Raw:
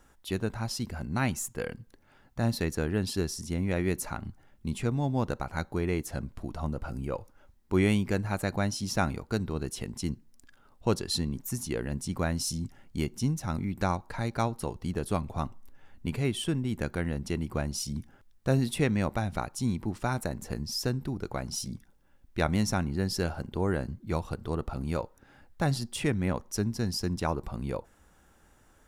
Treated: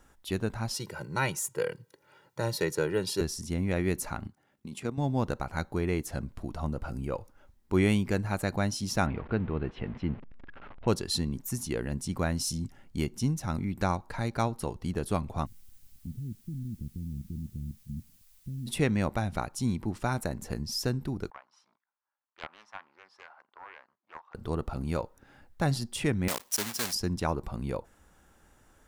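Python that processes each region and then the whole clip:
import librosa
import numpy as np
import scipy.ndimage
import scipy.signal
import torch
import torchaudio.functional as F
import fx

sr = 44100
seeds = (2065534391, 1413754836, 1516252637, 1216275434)

y = fx.chain(x, sr, fx.highpass(hz=140.0, slope=24),
    fx.comb(ms=2.1, depth=0.88), at=(0.74, 3.21))
y = fx.chain(y, sr, fx.highpass(hz=160.0, slope=12),
    fx.level_steps(step_db=10), at=(4.27, 4.98))
y = fx.chain(y, sr, fx.zero_step(step_db=-41.0),
    fx.lowpass(hz=2700.0, slope=24), at=(9.06, 10.88))
y = fx.cheby2_bandstop(y, sr, low_hz=930.0, high_hz=9200.0, order=4, stop_db=70, at=(15.45, 18.66), fade=0.02)
y = fx.level_steps(y, sr, step_db=12, at=(15.45, 18.66), fade=0.02)
y = fx.dmg_noise_colour(y, sr, seeds[0], colour='blue', level_db=-63.0, at=(15.45, 18.66), fade=0.02)
y = fx.chain(y, sr, fx.law_mismatch(coded='A'),
    fx.ladder_bandpass(hz=1200.0, resonance_pct=50),
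    fx.doppler_dist(depth_ms=0.35), at=(21.3, 24.35))
y = fx.chain(y, sr, fx.block_float(bits=3),
    fx.highpass(hz=660.0, slope=6),
    fx.high_shelf(hz=3900.0, db=9.0), at=(26.28, 26.95))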